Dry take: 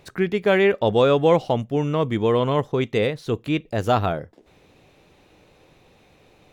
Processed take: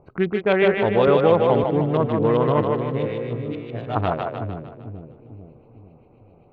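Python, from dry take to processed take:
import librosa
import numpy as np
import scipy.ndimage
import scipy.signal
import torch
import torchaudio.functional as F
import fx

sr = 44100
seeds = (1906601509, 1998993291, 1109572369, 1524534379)

p1 = fx.wiener(x, sr, points=25)
p2 = fx.rider(p1, sr, range_db=10, speed_s=0.5)
p3 = p1 + (p2 * librosa.db_to_amplitude(-2.0))
p4 = fx.comb_fb(p3, sr, f0_hz=58.0, decay_s=0.48, harmonics='all', damping=0.0, mix_pct=100, at=(2.7, 3.95), fade=0.02)
p5 = fx.filter_lfo_lowpass(p4, sr, shape='saw_up', hz=7.6, low_hz=970.0, high_hz=3800.0, q=1.4)
p6 = p5 + fx.echo_split(p5, sr, split_hz=420.0, low_ms=449, high_ms=152, feedback_pct=52, wet_db=-3.5, dry=0)
p7 = fx.band_squash(p6, sr, depth_pct=70, at=(1.07, 1.64))
y = p7 * librosa.db_to_amplitude(-5.5)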